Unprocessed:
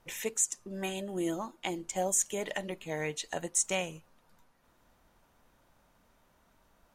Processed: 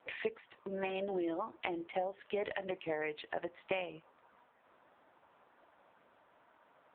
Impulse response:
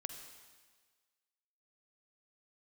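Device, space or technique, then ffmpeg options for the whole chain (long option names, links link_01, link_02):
voicemail: -filter_complex "[0:a]asettb=1/sr,asplit=3[link_01][link_02][link_03];[link_01]atrim=end=1.014[link_04];[link_02]atrim=start=1.01:end=3.04,asetpts=PTS-STARTPTS,afade=type=in:duration=0.004:curve=qsin,afade=type=out:start_time=2.026:duration=0.004:curve=qsin,lowpass=9400[link_05];[link_03]atrim=start=3.036[link_06];[link_04][link_05]acrossfade=duration=0.004:curve1=hsin:curve2=qsin[link_07];[link_07][link_06]acrossfade=duration=0.004:curve1=qsin:curve2=hsin,highpass=340,lowpass=2600,acompressor=threshold=-39dB:ratio=8,volume=7.5dB" -ar 8000 -c:a libopencore_amrnb -b:a 5900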